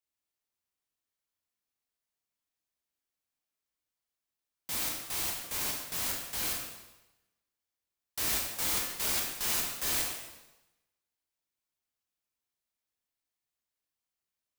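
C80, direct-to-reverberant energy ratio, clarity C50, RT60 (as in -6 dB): 4.5 dB, -2.0 dB, 2.5 dB, 1.0 s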